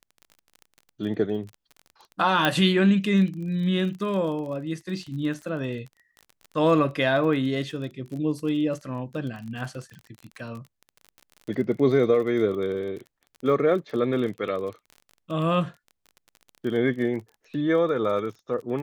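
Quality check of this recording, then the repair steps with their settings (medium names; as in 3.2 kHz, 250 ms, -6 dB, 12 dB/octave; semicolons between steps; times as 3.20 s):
crackle 31 per s -34 dBFS
2.45 s: pop -8 dBFS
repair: de-click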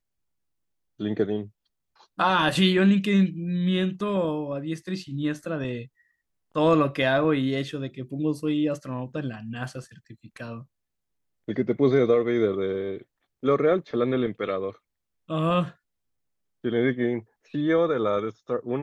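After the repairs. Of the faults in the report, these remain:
nothing left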